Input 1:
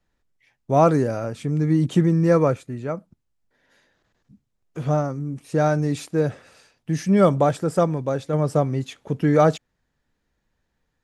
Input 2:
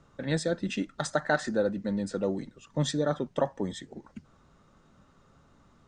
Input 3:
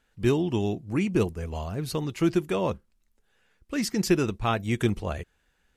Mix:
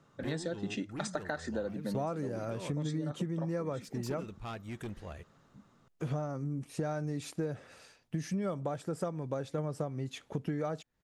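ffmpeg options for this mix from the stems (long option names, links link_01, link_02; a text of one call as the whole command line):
ffmpeg -i stem1.wav -i stem2.wav -i stem3.wav -filter_complex "[0:a]adelay=1250,volume=-3.5dB[link_01];[1:a]highpass=frequency=100:width=0.5412,highpass=frequency=100:width=1.3066,volume=-3.5dB[link_02];[2:a]asoftclip=type=tanh:threshold=-22.5dB,volume=-12.5dB[link_03];[link_01][link_02][link_03]amix=inputs=3:normalize=0,acompressor=threshold=-31dB:ratio=16" out.wav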